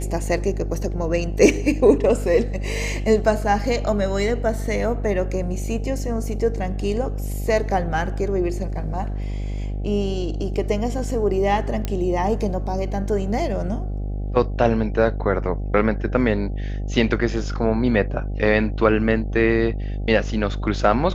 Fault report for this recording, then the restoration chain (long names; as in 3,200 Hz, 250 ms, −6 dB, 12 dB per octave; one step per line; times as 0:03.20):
mains buzz 50 Hz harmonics 16 −26 dBFS
0:11.85: click −11 dBFS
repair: click removal
hum removal 50 Hz, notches 16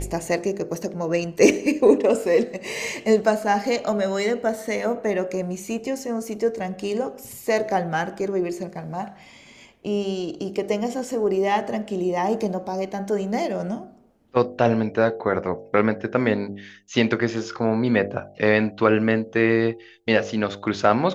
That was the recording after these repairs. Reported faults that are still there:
none of them is left